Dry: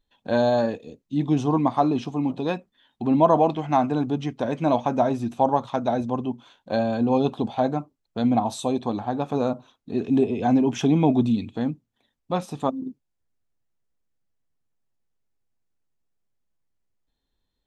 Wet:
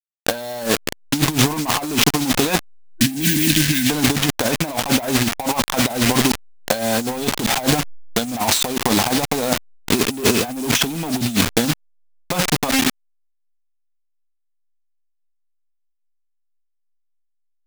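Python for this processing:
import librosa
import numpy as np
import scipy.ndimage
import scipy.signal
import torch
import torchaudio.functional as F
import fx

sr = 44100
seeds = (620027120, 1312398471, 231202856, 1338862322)

y = fx.delta_hold(x, sr, step_db=-32.0)
y = fx.tilt_shelf(y, sr, db=-6.0, hz=970.0)
y = fx.spec_erase(y, sr, start_s=2.97, length_s=0.92, low_hz=340.0, high_hz=1500.0)
y = fx.high_shelf(y, sr, hz=2100.0, db=3.5)
y = fx.leveller(y, sr, passes=3)
y = fx.over_compress(y, sr, threshold_db=-21.0, ratio=-0.5)
y = fx.am_noise(y, sr, seeds[0], hz=5.7, depth_pct=60)
y = F.gain(torch.from_numpy(y), 6.0).numpy()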